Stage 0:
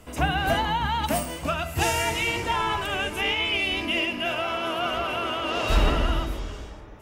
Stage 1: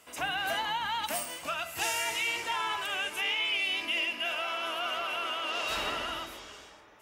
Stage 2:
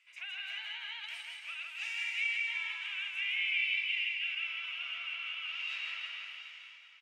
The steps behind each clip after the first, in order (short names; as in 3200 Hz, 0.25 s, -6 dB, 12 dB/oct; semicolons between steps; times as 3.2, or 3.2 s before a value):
HPF 1400 Hz 6 dB/oct; in parallel at -1 dB: limiter -22.5 dBFS, peak gain reduction 7.5 dB; on the sum: gain -7 dB
ladder band-pass 2500 Hz, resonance 70%; reverse bouncing-ball echo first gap 0.16 s, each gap 1.1×, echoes 5